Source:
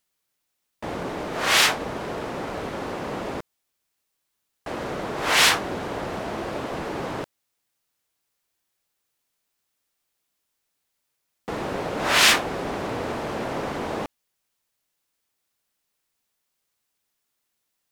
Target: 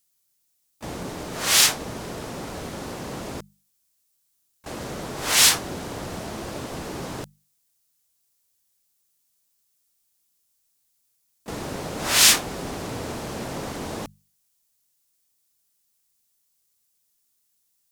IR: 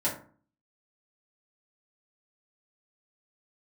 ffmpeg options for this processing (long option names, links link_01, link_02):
-filter_complex "[0:a]bass=frequency=250:gain=8,treble=frequency=4000:gain=14,asplit=2[link_01][link_02];[link_02]asetrate=58866,aresample=44100,atempo=0.749154,volume=-14dB[link_03];[link_01][link_03]amix=inputs=2:normalize=0,bandreject=frequency=50:width_type=h:width=6,bandreject=frequency=100:width_type=h:width=6,bandreject=frequency=150:width_type=h:width=6,bandreject=frequency=200:width_type=h:width=6,volume=-5.5dB"